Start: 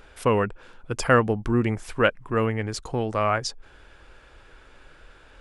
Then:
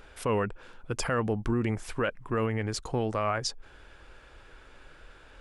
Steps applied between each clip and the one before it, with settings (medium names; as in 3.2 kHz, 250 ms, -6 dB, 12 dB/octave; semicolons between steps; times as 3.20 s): peak limiter -17 dBFS, peak gain reduction 10.5 dB; trim -1.5 dB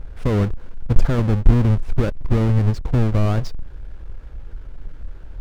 square wave that keeps the level; RIAA curve playback; trim -2.5 dB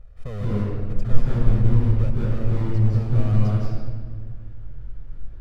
reverberation RT60 1.7 s, pre-delay 154 ms, DRR -5.5 dB; trim -17 dB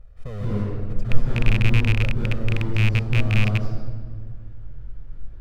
rattle on loud lows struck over -17 dBFS, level -12 dBFS; trim -1 dB